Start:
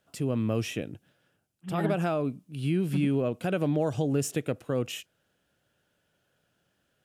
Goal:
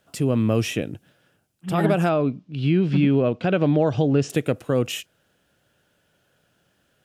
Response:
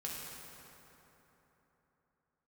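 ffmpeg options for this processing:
-filter_complex "[0:a]asettb=1/sr,asplit=3[a][b][c];[a]atrim=end=2.094[d];[b]atrim=start=2.09:end=4.3,asetpts=PTS-STARTPTS,afade=t=in:d=0.004:c=qsin,afade=t=out:st=2.206:d=0.004:c=qsin,lowpass=f=5k:w=0.5412,lowpass=f=5k:w=1.3066[e];[c]atrim=start=4.296[f];[d][e]acrossfade=d=0.004:c1=hsin:c2=qsin[g];[g][f]acrossfade=d=0.004:c1=qsin:c2=hsin,volume=7.5dB"

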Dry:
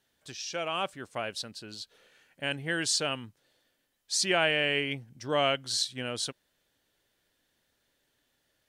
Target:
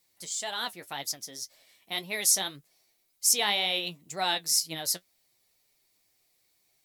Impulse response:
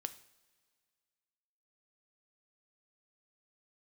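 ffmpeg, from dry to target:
-af "flanger=delay=7.9:depth=6.6:regen=44:speed=1.5:shape=triangular,asetrate=56007,aresample=44100,crystalizer=i=2.5:c=0"

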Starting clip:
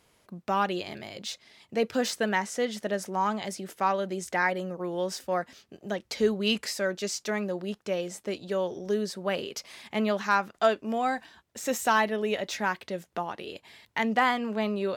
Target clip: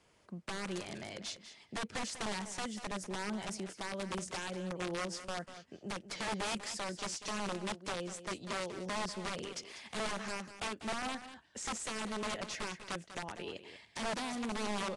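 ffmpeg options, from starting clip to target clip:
-filter_complex "[0:a]bandreject=f=3.8k:w=15,acrossover=split=250|7800[a][b][c];[b]acompressor=threshold=-35dB:ratio=5[d];[a][d][c]amix=inputs=3:normalize=0,aeval=exprs='(mod(26.6*val(0)+1,2)-1)/26.6':c=same,aecho=1:1:194:0.251,volume=-3dB" -ar 22050 -c:a nellymoser

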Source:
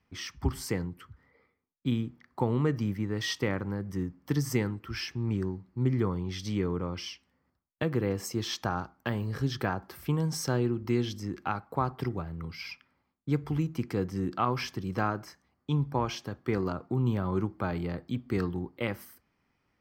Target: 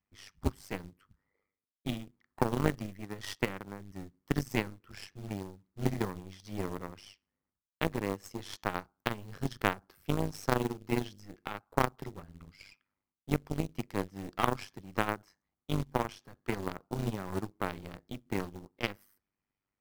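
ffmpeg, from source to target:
-af "acrusher=bits=6:mode=log:mix=0:aa=0.000001,aeval=exprs='0.188*(cos(1*acos(clip(val(0)/0.188,-1,1)))-cos(1*PI/2))+0.0335*(cos(2*acos(clip(val(0)/0.188,-1,1)))-cos(2*PI/2))+0.0376*(cos(3*acos(clip(val(0)/0.188,-1,1)))-cos(3*PI/2))+0.00531*(cos(6*acos(clip(val(0)/0.188,-1,1)))-cos(6*PI/2))+0.00668*(cos(7*acos(clip(val(0)/0.188,-1,1)))-cos(7*PI/2))':c=same,tremolo=f=99:d=0.824,volume=4.5dB"

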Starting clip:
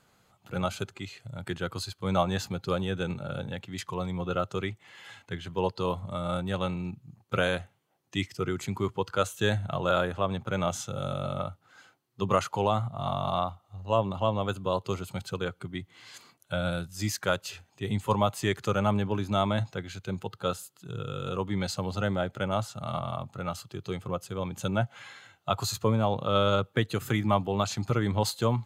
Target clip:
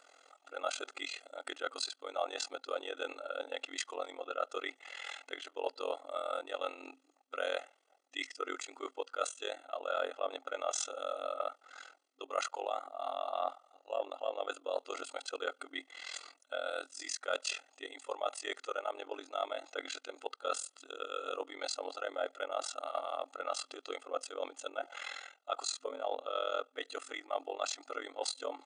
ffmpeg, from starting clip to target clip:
-af "aecho=1:1:1.5:0.72,tremolo=f=42:d=0.919,areverse,acompressor=threshold=-37dB:ratio=8,areverse,afftfilt=real='re*between(b*sr/4096,260,9800)':imag='im*between(b*sr/4096,260,9800)':win_size=4096:overlap=0.75,volume=6dB"

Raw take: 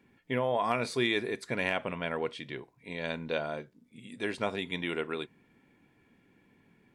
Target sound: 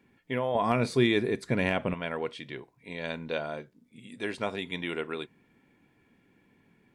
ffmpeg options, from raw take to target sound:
-filter_complex "[0:a]asettb=1/sr,asplit=3[a][b][c];[a]atrim=end=0.554[d];[b]atrim=start=0.55:end=1.94,asetpts=PTS-STARTPTS,afade=t=in:d=0.004:c=qsin,afade=t=out:st=1.386:d=0.004:c=qsin,lowshelf=f=370:g=11.5[e];[c]atrim=start=1.936[f];[d][e]acrossfade=d=0.004:c1=hsin:c2=qsin[g];[g][f]acrossfade=d=0.004:c1=qsin:c2=hsin"

